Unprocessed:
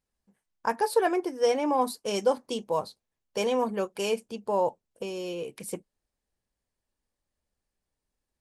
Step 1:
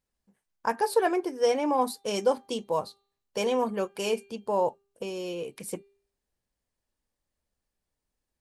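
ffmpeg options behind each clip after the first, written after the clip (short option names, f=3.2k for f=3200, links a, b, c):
-af "bandreject=f=398:t=h:w=4,bandreject=f=796:t=h:w=4,bandreject=f=1.194k:t=h:w=4,bandreject=f=1.592k:t=h:w=4,bandreject=f=1.99k:t=h:w=4,bandreject=f=2.388k:t=h:w=4,bandreject=f=2.786k:t=h:w=4,bandreject=f=3.184k:t=h:w=4,bandreject=f=3.582k:t=h:w=4,bandreject=f=3.98k:t=h:w=4,bandreject=f=4.378k:t=h:w=4"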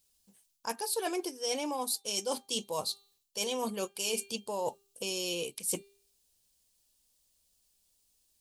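-af "aexciter=amount=5.6:drive=5.1:freq=2.7k,areverse,acompressor=threshold=-31dB:ratio=6,areverse"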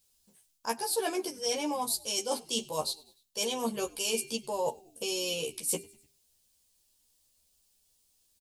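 -filter_complex "[0:a]asplit=2[a][b];[b]adelay=13,volume=-2.5dB[c];[a][c]amix=inputs=2:normalize=0,asplit=4[d][e][f][g];[e]adelay=99,afreqshift=-82,volume=-23.5dB[h];[f]adelay=198,afreqshift=-164,volume=-29.3dB[i];[g]adelay=297,afreqshift=-246,volume=-35.2dB[j];[d][h][i][j]amix=inputs=4:normalize=0"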